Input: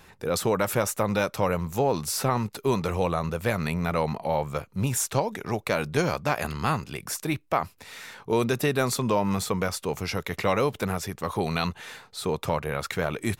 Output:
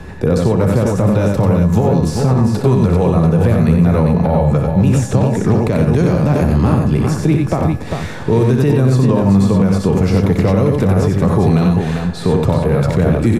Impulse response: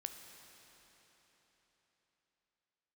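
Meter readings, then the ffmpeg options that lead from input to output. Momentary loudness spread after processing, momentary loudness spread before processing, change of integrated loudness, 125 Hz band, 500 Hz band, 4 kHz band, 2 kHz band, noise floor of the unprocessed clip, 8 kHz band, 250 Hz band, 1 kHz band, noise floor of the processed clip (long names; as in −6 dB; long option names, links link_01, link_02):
3 LU, 6 LU, +13.5 dB, +19.0 dB, +10.5 dB, +2.0 dB, +3.0 dB, −59 dBFS, −0.5 dB, +17.0 dB, +5.5 dB, −25 dBFS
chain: -filter_complex "[0:a]lowpass=9700,acrossover=split=210|710|7600[link_01][link_02][link_03][link_04];[link_01]acompressor=threshold=-39dB:ratio=4[link_05];[link_02]acompressor=threshold=-39dB:ratio=4[link_06];[link_03]acompressor=threshold=-40dB:ratio=4[link_07];[link_04]acompressor=threshold=-51dB:ratio=4[link_08];[link_05][link_06][link_07][link_08]amix=inputs=4:normalize=0,asoftclip=type=tanh:threshold=-20.5dB,tiltshelf=frequency=690:gain=9.5,aecho=1:1:62|92|397:0.355|0.631|0.501,asplit=2[link_09][link_10];[1:a]atrim=start_sample=2205[link_11];[link_10][link_11]afir=irnorm=-1:irlink=0,volume=0dB[link_12];[link_09][link_12]amix=inputs=2:normalize=0,aeval=exprs='val(0)+0.00158*sin(2*PI*1700*n/s)':channel_layout=same,alimiter=level_in=15.5dB:limit=-1dB:release=50:level=0:latency=1,volume=-3dB"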